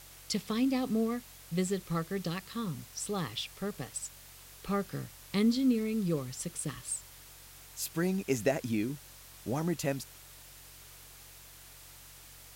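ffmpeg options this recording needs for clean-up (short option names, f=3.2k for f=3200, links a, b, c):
-af "bandreject=f=45.8:t=h:w=4,bandreject=f=91.6:t=h:w=4,bandreject=f=137.4:t=h:w=4,afwtdn=0.0025"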